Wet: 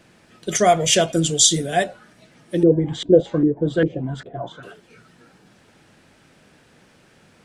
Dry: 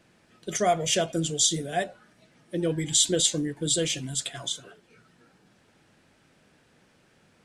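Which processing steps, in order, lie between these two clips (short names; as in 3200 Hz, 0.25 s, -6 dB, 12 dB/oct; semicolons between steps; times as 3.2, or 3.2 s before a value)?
2.63–4.63 LFO low-pass saw up 2.5 Hz 330–1700 Hz; gain +8 dB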